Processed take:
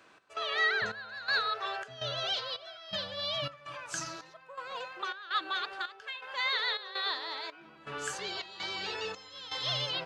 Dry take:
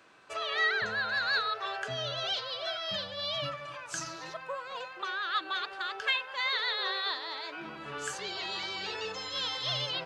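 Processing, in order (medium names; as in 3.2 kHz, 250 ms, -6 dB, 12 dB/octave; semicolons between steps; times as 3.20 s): trance gate "x.xxx..xx" 82 bpm -12 dB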